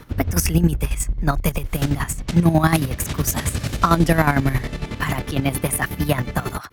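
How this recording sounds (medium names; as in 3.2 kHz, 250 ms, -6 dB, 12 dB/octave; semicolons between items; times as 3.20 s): chopped level 11 Hz, depth 65%, duty 40%; Opus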